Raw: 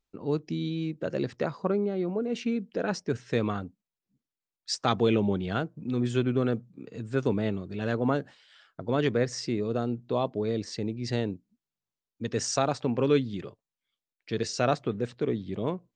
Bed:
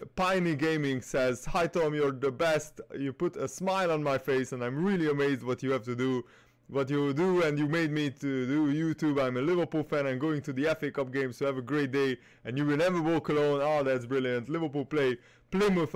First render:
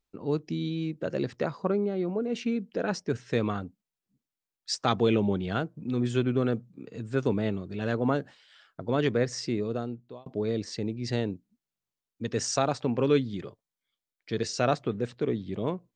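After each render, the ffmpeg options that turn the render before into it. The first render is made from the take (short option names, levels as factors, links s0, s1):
-filter_complex "[0:a]asettb=1/sr,asplit=3[s0][s1][s2];[s0]atrim=end=13.184[s3];[s1]atrim=start=13.18:end=14.42,asetpts=PTS-STARTPTS,afade=t=in:d=0.004:c=qsin,afade=t=out:st=1.236:d=0.004:c=qsin,bandreject=f=2700:w=12[s4];[s2]atrim=start=14.416[s5];[s3][s4]acrossfade=d=0.004:c1=hsin:c2=qsin[s6];[s6][s5]acrossfade=d=0.004:c1=qsin:c2=hsin,asplit=2[s7][s8];[s7]atrim=end=10.26,asetpts=PTS-STARTPTS,afade=t=out:st=9.59:d=0.67[s9];[s8]atrim=start=10.26,asetpts=PTS-STARTPTS,afade=t=in:d=0.004:c=hsin[s10];[s9][s10]concat=n=2:v=0:a=1"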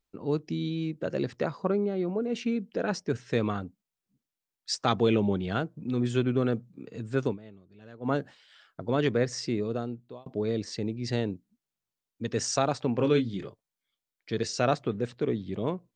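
-filter_complex "[0:a]asettb=1/sr,asplit=3[s0][s1][s2];[s0]atrim=end=12.964[s3];[s1]atrim=start=12.96:end=13.47,asetpts=PTS-STARTPTS,afade=t=in:d=0.004:c=qsin,afade=t=out:st=0.506:d=0.004:c=qsin,asplit=2[s4][s5];[s5]adelay=26,volume=0.422[s6];[s4][s6]amix=inputs=2:normalize=0,atrim=end_sample=22491[s7];[s2]atrim=start=13.466[s8];[s3][s7]acrossfade=d=0.004:c1=hsin:c2=qsin[s9];[s9][s8]acrossfade=d=0.004:c1=qsin:c2=hsin,asplit=3[s10][s11][s12];[s10]atrim=end=7.38,asetpts=PTS-STARTPTS,afade=t=out:st=7.25:d=0.13:silence=0.105925[s13];[s11]atrim=start=7.38:end=8,asetpts=PTS-STARTPTS,volume=0.106[s14];[s12]atrim=start=8,asetpts=PTS-STARTPTS,afade=t=in:d=0.13:silence=0.105925[s15];[s13][s14][s15]concat=n=3:v=0:a=1"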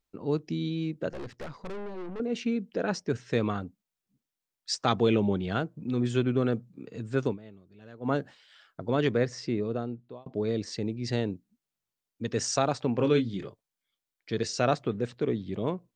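-filter_complex "[0:a]asettb=1/sr,asplit=3[s0][s1][s2];[s0]atrim=end=1.094[s3];[s1]atrim=start=1.09:end=2.2,asetpts=PTS-STARTPTS,afade=t=in:d=0.004:c=qsin,afade=t=out:st=1.106:d=0.004:c=qsin,aeval=exprs='(tanh(63.1*val(0)+0.7)-tanh(0.7))/63.1':c=same[s4];[s2]atrim=start=2.196[s5];[s3][s4]acrossfade=d=0.004:c1=hsin:c2=qsin[s6];[s6][s5]acrossfade=d=0.004:c1=qsin:c2=hsin,asettb=1/sr,asplit=3[s7][s8][s9];[s7]atrim=end=9.274[s10];[s8]atrim=start=9.27:end=10.34,asetpts=PTS-STARTPTS,afade=t=in:d=0.004:c=qsin,afade=t=out:st=1.066:d=0.004:c=qsin,aemphasis=mode=reproduction:type=50kf[s11];[s9]atrim=start=10.336[s12];[s10][s11]acrossfade=d=0.004:c1=hsin:c2=qsin[s13];[s13][s12]acrossfade=d=0.004:c1=qsin:c2=hsin"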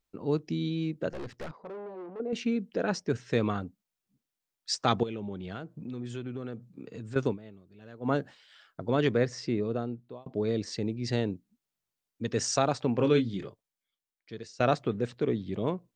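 -filter_complex "[0:a]asettb=1/sr,asplit=3[s0][s1][s2];[s0]atrim=end=1.514[s3];[s1]atrim=start=1.51:end=2.33,asetpts=PTS-STARTPTS,afade=t=in:d=0.004:c=qsin,afade=t=out:st=0.816:d=0.004:c=qsin,bandpass=f=600:t=q:w=0.87[s4];[s2]atrim=start=2.326[s5];[s3][s4]acrossfade=d=0.004:c1=hsin:c2=qsin[s6];[s6][s5]acrossfade=d=0.004:c1=qsin:c2=hsin,asettb=1/sr,asplit=3[s7][s8][s9];[s7]atrim=end=5.034[s10];[s8]atrim=start=5.03:end=7.16,asetpts=PTS-STARTPTS,afade=t=in:d=0.004:c=qsin,afade=t=out:st=2.126:d=0.004:c=qsin,acompressor=threshold=0.0141:ratio=3:attack=3.2:release=140:knee=1:detection=peak[s11];[s9]atrim=start=7.156[s12];[s10][s11]acrossfade=d=0.004:c1=hsin:c2=qsin[s13];[s13][s12]acrossfade=d=0.004:c1=qsin:c2=hsin,asplit=2[s14][s15];[s14]atrim=end=14.6,asetpts=PTS-STARTPTS,afade=t=out:st=13.31:d=1.29:silence=0.112202[s16];[s15]atrim=start=14.6,asetpts=PTS-STARTPTS,afade=t=in:d=0.004:c=hsin:silence=0.112202[s17];[s16][s17]concat=n=2:v=0:a=1"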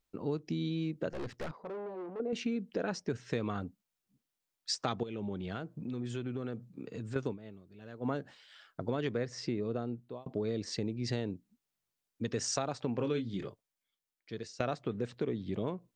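-af "acompressor=threshold=0.0282:ratio=4"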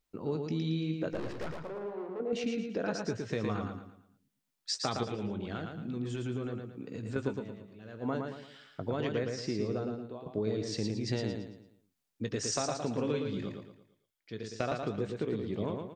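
-filter_complex "[0:a]asplit=2[s0][s1];[s1]adelay=19,volume=0.251[s2];[s0][s2]amix=inputs=2:normalize=0,aecho=1:1:113|226|339|452|565:0.596|0.226|0.086|0.0327|0.0124"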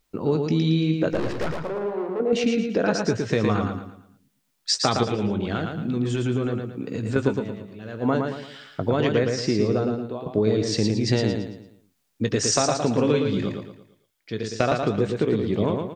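-af "volume=3.76"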